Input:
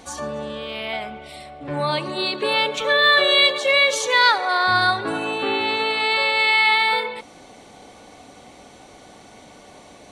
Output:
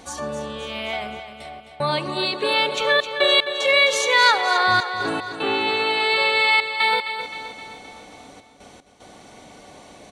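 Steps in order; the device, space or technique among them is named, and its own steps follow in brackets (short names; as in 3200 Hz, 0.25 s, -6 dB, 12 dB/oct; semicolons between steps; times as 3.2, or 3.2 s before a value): trance gate with a delay (step gate "xxxxxx.x." 75 bpm -60 dB; feedback echo 0.261 s, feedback 54%, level -10 dB)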